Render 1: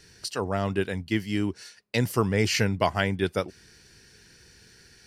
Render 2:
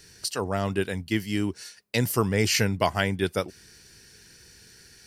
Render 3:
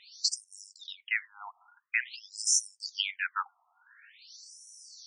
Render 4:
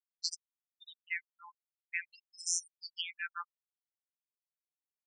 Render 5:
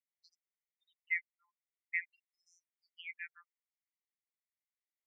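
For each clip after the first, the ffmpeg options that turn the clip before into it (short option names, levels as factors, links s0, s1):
-af "highshelf=f=7500:g=10.5"
-af "afftfilt=real='re*between(b*sr/1024,930*pow(7700/930,0.5+0.5*sin(2*PI*0.48*pts/sr))/1.41,930*pow(7700/930,0.5+0.5*sin(2*PI*0.48*pts/sr))*1.41)':imag='im*between(b*sr/1024,930*pow(7700/930,0.5+0.5*sin(2*PI*0.48*pts/sr))/1.41,930*pow(7700/930,0.5+0.5*sin(2*PI*0.48*pts/sr))*1.41)':win_size=1024:overlap=0.75,volume=1.68"
-af "afftfilt=real='hypot(re,im)*cos(PI*b)':imag='0':win_size=1024:overlap=0.75,afftfilt=real='re*gte(hypot(re,im),0.0224)':imag='im*gte(hypot(re,im),0.0224)':win_size=1024:overlap=0.75,volume=0.631"
-af "asuperpass=centerf=2100:order=4:qfactor=3.8,aecho=1:1:1:0.3,volume=1.26"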